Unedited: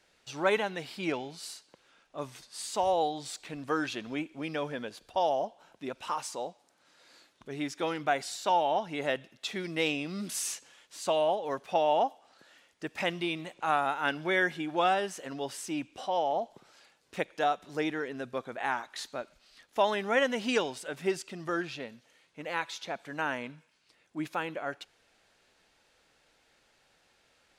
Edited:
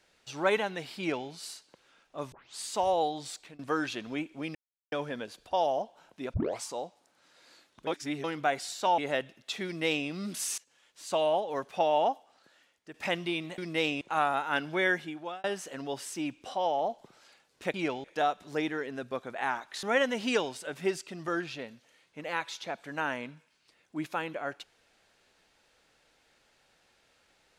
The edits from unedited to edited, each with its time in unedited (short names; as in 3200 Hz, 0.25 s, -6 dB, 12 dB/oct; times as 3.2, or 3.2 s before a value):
0.98–1.28 copy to 17.26
2.32 tape start 0.25 s
3.19–3.59 fade out equal-power, to -22.5 dB
4.55 insert silence 0.37 s
5.97 tape start 0.28 s
7.5–7.87 reverse
8.61–8.93 cut
9.6–10.03 copy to 13.53
10.53–11.15 fade in, from -22 dB
11.94–12.89 fade out, to -10.5 dB
14.42–14.96 fade out
19.05–20.04 cut